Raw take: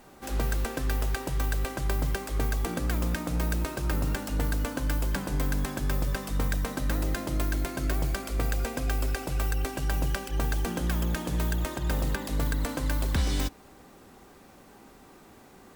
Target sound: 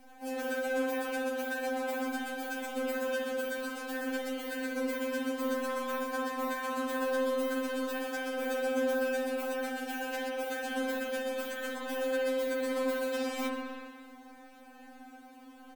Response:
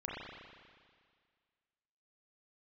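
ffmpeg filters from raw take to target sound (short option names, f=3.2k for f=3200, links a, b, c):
-filter_complex "[0:a]acrossover=split=210[a][b];[a]acompressor=threshold=-43dB:ratio=4[c];[c][b]amix=inputs=2:normalize=0,asplit=4[d][e][f][g];[e]adelay=138,afreqshift=-70,volume=-16.5dB[h];[f]adelay=276,afreqshift=-140,volume=-25.1dB[i];[g]adelay=414,afreqshift=-210,volume=-33.8dB[j];[d][h][i][j]amix=inputs=4:normalize=0[k];[1:a]atrim=start_sample=2205[l];[k][l]afir=irnorm=-1:irlink=0,afftfilt=real='re*3.46*eq(mod(b,12),0)':imag='im*3.46*eq(mod(b,12),0)':win_size=2048:overlap=0.75"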